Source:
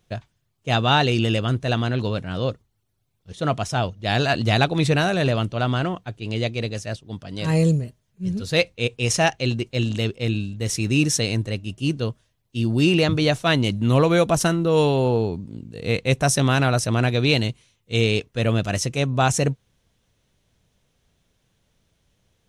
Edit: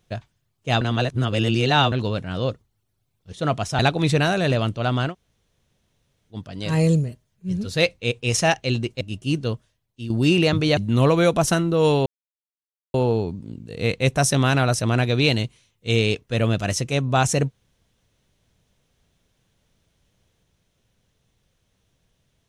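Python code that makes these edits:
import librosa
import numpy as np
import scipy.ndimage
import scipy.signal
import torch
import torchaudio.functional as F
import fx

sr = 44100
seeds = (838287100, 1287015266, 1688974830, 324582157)

y = fx.edit(x, sr, fx.reverse_span(start_s=0.81, length_s=1.11),
    fx.cut(start_s=3.79, length_s=0.76),
    fx.room_tone_fill(start_s=5.86, length_s=1.23, crossfade_s=0.1),
    fx.cut(start_s=9.77, length_s=1.8),
    fx.fade_out_to(start_s=12.09, length_s=0.57, floor_db=-10.0),
    fx.cut(start_s=13.33, length_s=0.37),
    fx.insert_silence(at_s=14.99, length_s=0.88), tone=tone)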